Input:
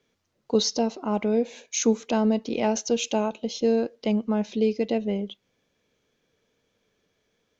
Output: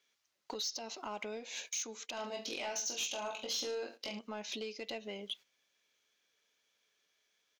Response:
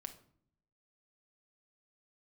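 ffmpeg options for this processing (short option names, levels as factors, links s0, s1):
-filter_complex "[0:a]acompressor=threshold=0.0178:ratio=8,tiltshelf=f=910:g=-9,alimiter=level_in=2:limit=0.0631:level=0:latency=1:release=129,volume=0.501,asplit=3[s0][s1][s2];[s0]afade=t=out:st=2.16:d=0.02[s3];[s1]aecho=1:1:20|44|72.8|107.4|148.8:0.631|0.398|0.251|0.158|0.1,afade=t=in:st=2.16:d=0.02,afade=t=out:st=4.18:d=0.02[s4];[s2]afade=t=in:st=4.18:d=0.02[s5];[s3][s4][s5]amix=inputs=3:normalize=0,agate=range=0.224:threshold=0.00251:ratio=16:detection=peak,bass=f=250:g=-9,treble=f=4000:g=0,asoftclip=type=tanh:threshold=0.0188,bandreject=f=480:w=12,volume=1.68"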